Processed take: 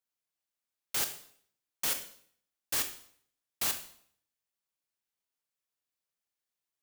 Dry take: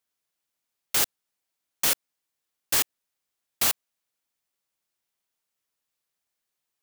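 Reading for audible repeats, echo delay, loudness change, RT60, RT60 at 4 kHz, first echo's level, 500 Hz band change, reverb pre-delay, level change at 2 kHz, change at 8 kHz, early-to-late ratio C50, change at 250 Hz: no echo audible, no echo audible, −7.5 dB, 0.60 s, 0.55 s, no echo audible, −8.0 dB, 22 ms, −7.5 dB, −7.5 dB, 9.5 dB, −7.5 dB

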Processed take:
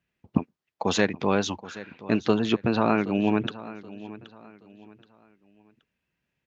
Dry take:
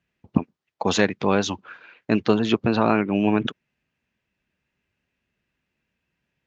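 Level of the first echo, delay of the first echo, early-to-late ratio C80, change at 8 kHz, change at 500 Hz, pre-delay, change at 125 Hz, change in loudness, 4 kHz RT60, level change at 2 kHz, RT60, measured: −17.0 dB, 775 ms, no reverb audible, can't be measured, −3.0 dB, no reverb audible, −3.0 dB, −3.0 dB, no reverb audible, −3.0 dB, no reverb audible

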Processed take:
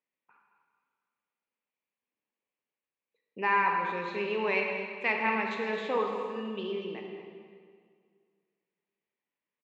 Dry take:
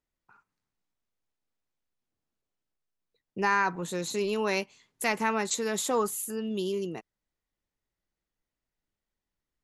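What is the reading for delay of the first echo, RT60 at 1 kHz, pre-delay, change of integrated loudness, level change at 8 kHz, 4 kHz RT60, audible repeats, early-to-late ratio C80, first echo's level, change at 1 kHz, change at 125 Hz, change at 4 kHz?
221 ms, 2.0 s, 24 ms, −1.0 dB, below −30 dB, 1.6 s, 1, 3.5 dB, −11.0 dB, +1.0 dB, −6.5 dB, −5.0 dB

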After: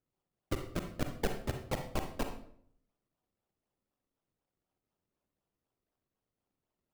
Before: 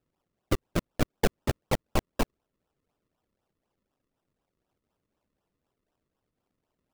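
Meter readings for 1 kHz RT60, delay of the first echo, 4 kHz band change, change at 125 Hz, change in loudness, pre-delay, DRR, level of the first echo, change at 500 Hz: 0.60 s, no echo audible, −7.5 dB, −7.5 dB, −7.5 dB, 37 ms, 5.0 dB, no echo audible, −7.5 dB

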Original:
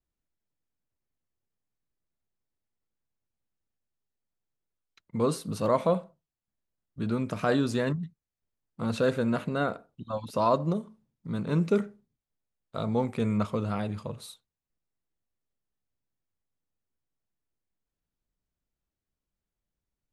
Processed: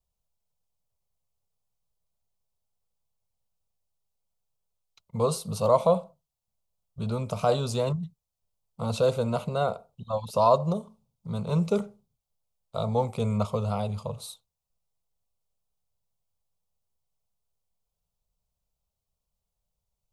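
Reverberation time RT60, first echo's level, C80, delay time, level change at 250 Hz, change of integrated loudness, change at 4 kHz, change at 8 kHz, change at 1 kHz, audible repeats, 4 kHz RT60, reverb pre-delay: no reverb audible, no echo audible, no reverb audible, no echo audible, −3.0 dB, +1.5 dB, +3.0 dB, +5.0 dB, +3.5 dB, no echo audible, no reverb audible, no reverb audible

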